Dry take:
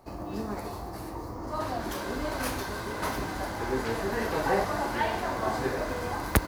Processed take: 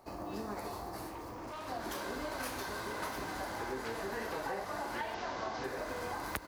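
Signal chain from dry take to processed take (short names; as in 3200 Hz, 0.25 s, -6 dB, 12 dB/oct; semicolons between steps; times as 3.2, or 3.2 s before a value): 5.14–5.64 delta modulation 32 kbps, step -34.5 dBFS; low shelf 240 Hz -8.5 dB; compressor 6:1, threshold -34 dBFS, peak gain reduction 14 dB; 1.07–1.68 hard clip -40 dBFS, distortion -19 dB; gain -1.5 dB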